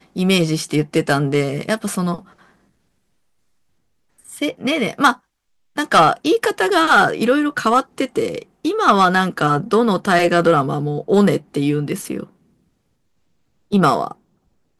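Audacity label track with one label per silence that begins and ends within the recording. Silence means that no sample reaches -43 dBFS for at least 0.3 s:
2.490000	4.190000	silence
5.170000	5.760000	silence
12.290000	13.710000	silence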